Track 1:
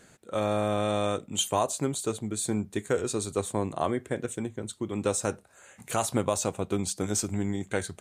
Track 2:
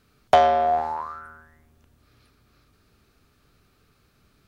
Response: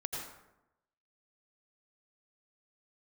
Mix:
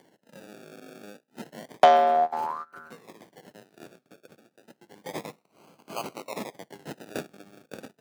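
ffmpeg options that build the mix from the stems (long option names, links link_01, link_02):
-filter_complex "[0:a]highpass=900,acrusher=samples=34:mix=1:aa=0.000001:lfo=1:lforange=20.4:lforate=0.3,volume=-3dB,afade=type=in:start_time=4.69:duration=0.36:silence=0.354813,asplit=2[link_01][link_02];[1:a]agate=range=-33dB:threshold=-47dB:ratio=3:detection=peak,adelay=1500,volume=-0.5dB[link_03];[link_02]apad=whole_len=263427[link_04];[link_03][link_04]sidechaingate=range=-20dB:threshold=-59dB:ratio=16:detection=peak[link_05];[link_01][link_05]amix=inputs=2:normalize=0,highpass=frequency=150:width=0.5412,highpass=frequency=150:width=1.3066,acompressor=mode=upward:threshold=-49dB:ratio=2.5"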